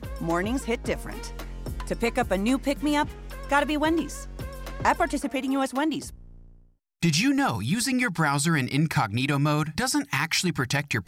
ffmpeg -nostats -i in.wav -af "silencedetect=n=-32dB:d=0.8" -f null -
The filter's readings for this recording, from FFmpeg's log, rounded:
silence_start: 6.09
silence_end: 7.03 | silence_duration: 0.94